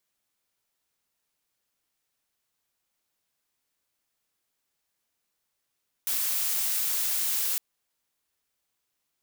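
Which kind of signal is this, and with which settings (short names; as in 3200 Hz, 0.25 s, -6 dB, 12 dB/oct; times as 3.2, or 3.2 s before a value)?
noise blue, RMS -27.5 dBFS 1.51 s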